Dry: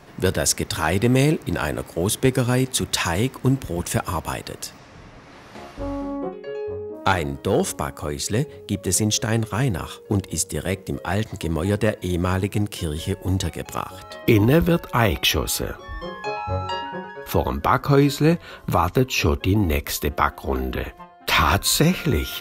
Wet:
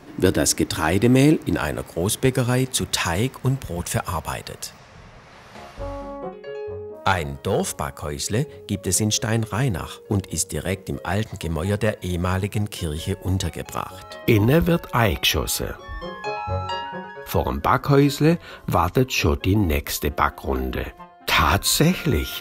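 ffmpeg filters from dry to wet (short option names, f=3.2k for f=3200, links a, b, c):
-af "asetnsamples=n=441:p=0,asendcmd='0.71 equalizer g 7.5;1.57 equalizer g -3;3.33 equalizer g -14;8.12 equalizer g -2.5;11.28 equalizer g -10.5;12.65 equalizer g -3;16.5 equalizer g -10;17.4 equalizer g 0.5',equalizer=f=300:t=o:w=0.4:g=14"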